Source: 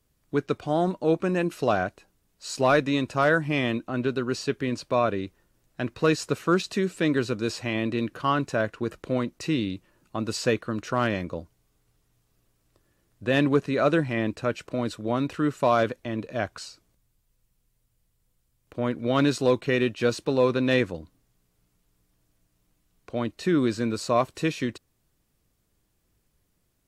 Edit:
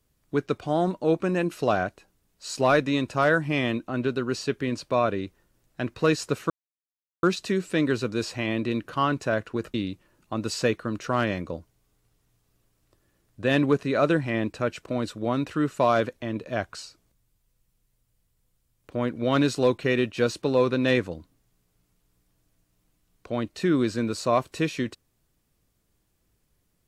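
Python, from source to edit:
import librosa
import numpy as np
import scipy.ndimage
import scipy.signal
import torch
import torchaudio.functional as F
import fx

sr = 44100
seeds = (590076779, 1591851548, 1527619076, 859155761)

y = fx.edit(x, sr, fx.insert_silence(at_s=6.5, length_s=0.73),
    fx.cut(start_s=9.01, length_s=0.56), tone=tone)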